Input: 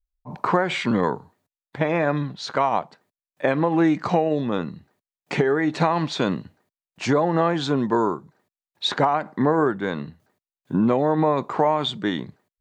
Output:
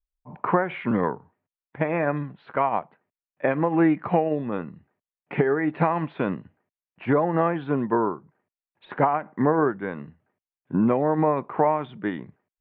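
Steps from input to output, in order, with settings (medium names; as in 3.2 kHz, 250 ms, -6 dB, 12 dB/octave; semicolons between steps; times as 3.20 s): de-esser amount 75%; steep low-pass 2.7 kHz 36 dB/octave; upward expansion 1.5:1, over -28 dBFS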